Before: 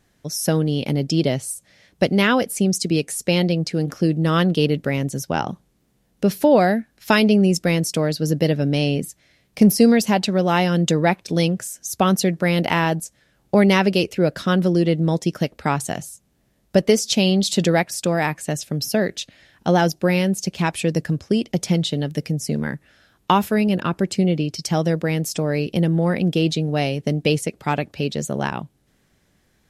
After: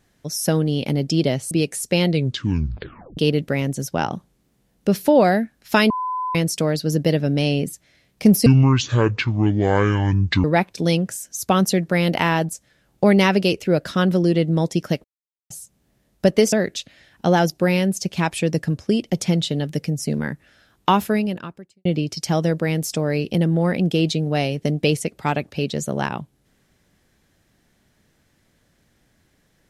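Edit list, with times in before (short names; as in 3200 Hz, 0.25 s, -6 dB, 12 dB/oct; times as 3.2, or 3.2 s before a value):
1.51–2.87 cut
3.42 tape stop 1.11 s
7.26–7.71 bleep 1010 Hz -22 dBFS
9.82–10.95 speed 57%
15.55–16.01 mute
17.03–18.94 cut
23.52–24.27 fade out quadratic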